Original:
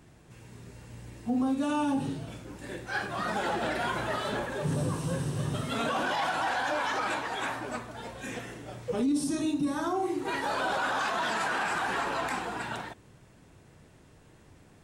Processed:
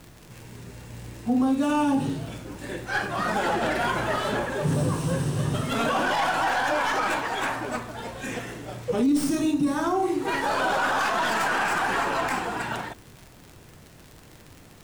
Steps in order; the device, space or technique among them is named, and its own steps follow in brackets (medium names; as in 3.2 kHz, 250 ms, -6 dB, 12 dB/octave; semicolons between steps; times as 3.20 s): record under a worn stylus (tracing distortion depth 0.049 ms; crackle 77 per s -40 dBFS; pink noise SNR 29 dB); dynamic bell 3.8 kHz, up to -4 dB, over -54 dBFS, Q 5.3; trim +5.5 dB